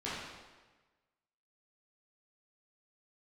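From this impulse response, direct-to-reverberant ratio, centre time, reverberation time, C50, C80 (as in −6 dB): −10.0 dB, 91 ms, 1.3 s, −1.5 dB, 1.5 dB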